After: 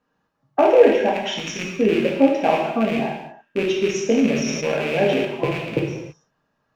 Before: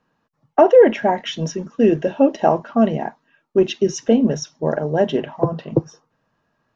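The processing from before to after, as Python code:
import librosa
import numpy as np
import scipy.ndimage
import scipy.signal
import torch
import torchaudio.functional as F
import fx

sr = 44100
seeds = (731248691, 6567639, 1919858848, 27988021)

y = fx.rattle_buzz(x, sr, strikes_db=-28.0, level_db=-14.0)
y = fx.over_compress(y, sr, threshold_db=-24.0, ratio=-0.5, at=(1.09, 1.74))
y = fx.rev_gated(y, sr, seeds[0], gate_ms=350, shape='falling', drr_db=-2.5)
y = fx.sustainer(y, sr, db_per_s=33.0, at=(4.36, 5.25))
y = y * librosa.db_to_amplitude(-6.0)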